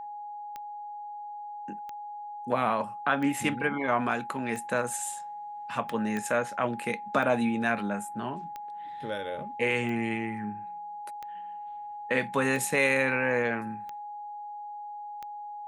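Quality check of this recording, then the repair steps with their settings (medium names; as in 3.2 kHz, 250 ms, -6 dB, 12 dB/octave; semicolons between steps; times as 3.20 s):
tick 45 rpm -25 dBFS
whine 830 Hz -37 dBFS
6.17 s: pop -19 dBFS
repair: de-click; band-stop 830 Hz, Q 30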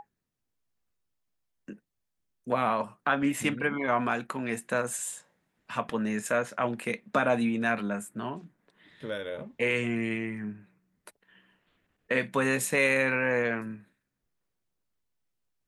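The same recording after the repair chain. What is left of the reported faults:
nothing left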